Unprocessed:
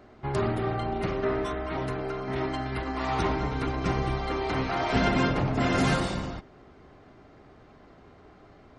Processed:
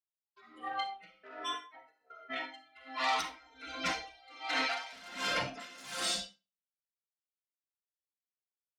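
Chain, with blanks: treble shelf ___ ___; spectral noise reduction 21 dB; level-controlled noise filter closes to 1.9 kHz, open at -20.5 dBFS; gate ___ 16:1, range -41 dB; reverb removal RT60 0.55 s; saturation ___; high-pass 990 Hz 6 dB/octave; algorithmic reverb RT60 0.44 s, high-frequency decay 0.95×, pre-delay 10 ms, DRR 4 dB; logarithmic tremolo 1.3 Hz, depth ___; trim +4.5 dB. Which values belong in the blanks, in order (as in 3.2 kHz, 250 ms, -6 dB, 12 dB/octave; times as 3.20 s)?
2.9 kHz, +11.5 dB, -39 dBFS, -25.5 dBFS, 25 dB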